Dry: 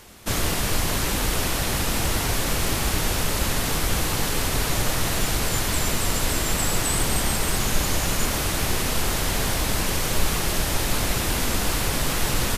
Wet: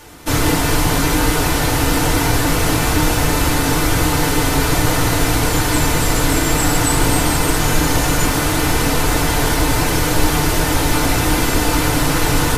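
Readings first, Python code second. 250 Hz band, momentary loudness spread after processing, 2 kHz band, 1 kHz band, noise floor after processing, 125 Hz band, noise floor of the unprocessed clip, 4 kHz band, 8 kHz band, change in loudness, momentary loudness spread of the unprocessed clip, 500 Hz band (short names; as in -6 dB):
+11.5 dB, 1 LU, +8.0 dB, +10.0 dB, -18 dBFS, +9.0 dB, -25 dBFS, +5.0 dB, +5.0 dB, +7.5 dB, 1 LU, +9.0 dB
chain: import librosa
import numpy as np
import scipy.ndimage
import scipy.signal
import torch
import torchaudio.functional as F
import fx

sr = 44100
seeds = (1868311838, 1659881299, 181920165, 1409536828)

y = fx.rev_fdn(x, sr, rt60_s=0.3, lf_ratio=1.0, hf_ratio=0.4, size_ms=20.0, drr_db=-4.0)
y = y * librosa.db_to_amplitude(3.0)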